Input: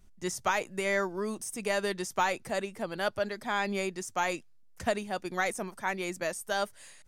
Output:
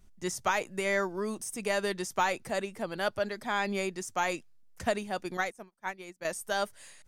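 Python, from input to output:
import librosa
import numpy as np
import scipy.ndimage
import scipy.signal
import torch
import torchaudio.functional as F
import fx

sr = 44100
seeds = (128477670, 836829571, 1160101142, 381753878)

y = fx.upward_expand(x, sr, threshold_db=-49.0, expansion=2.5, at=(5.37, 6.25))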